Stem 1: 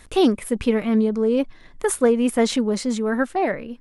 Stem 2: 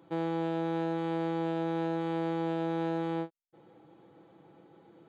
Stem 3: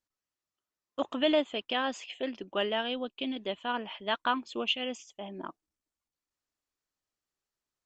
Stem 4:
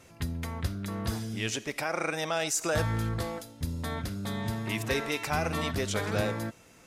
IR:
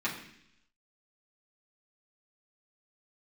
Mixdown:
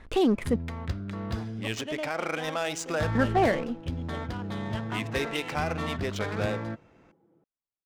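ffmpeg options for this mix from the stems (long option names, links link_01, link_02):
-filter_complex "[0:a]alimiter=limit=-14.5dB:level=0:latency=1:release=19,asoftclip=type=tanh:threshold=-13dB,volume=0.5dB,asplit=3[link_01][link_02][link_03];[link_01]atrim=end=0.56,asetpts=PTS-STARTPTS,afade=type=out:start_time=0.556:duration=0.004:curve=hsin[link_04];[link_02]atrim=start=0.56:end=3.15,asetpts=PTS-STARTPTS,volume=0[link_05];[link_03]atrim=start=3.15,asetpts=PTS-STARTPTS,afade=type=in:duration=0.004:curve=hsin[link_06];[link_04][link_05][link_06]concat=n=3:v=0:a=1[link_07];[1:a]acompressor=threshold=-37dB:ratio=2.5,lowshelf=frequency=450:gain=5.5,adelay=2350,volume=-11.5dB[link_08];[2:a]adelay=650,volume=-9.5dB[link_09];[3:a]adynamicequalizer=threshold=0.00398:dfrequency=6500:dqfactor=0.7:tfrequency=6500:tqfactor=0.7:attack=5:release=100:ratio=0.375:range=2.5:mode=cutabove:tftype=highshelf,adelay=250,volume=0dB[link_10];[link_07][link_08][link_09][link_10]amix=inputs=4:normalize=0,adynamicsmooth=sensitivity=8:basefreq=1900"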